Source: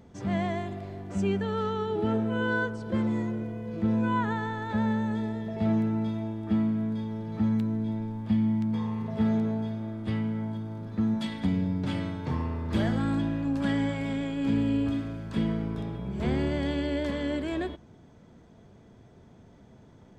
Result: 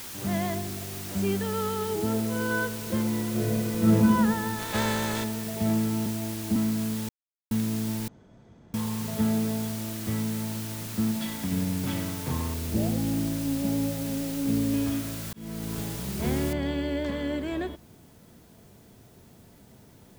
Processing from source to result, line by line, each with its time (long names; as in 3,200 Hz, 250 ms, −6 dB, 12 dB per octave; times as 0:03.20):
0:00.54–0:01.06: spectral envelope exaggerated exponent 1.5
0:01.95–0:02.51: high-frequency loss of the air 330 metres
0:03.30–0:03.94: thrown reverb, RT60 1.8 s, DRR −8.5 dB
0:04.58–0:05.23: compressing power law on the bin magnitudes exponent 0.48
0:06.06–0:06.56: Butterworth low-pass 980 Hz 96 dB per octave
0:07.09–0:07.51: silence
0:08.08–0:08.74: fill with room tone
0:09.74–0:10.42: high-shelf EQ 4,400 Hz −10.5 dB
0:11.11–0:11.52: downward compressor 3 to 1, threshold −27 dBFS
0:12.54–0:14.74: inverse Chebyshev low-pass filter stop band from 1,500 Hz
0:15.33–0:15.78: fade in linear
0:16.53: noise floor change −40 dB −62 dB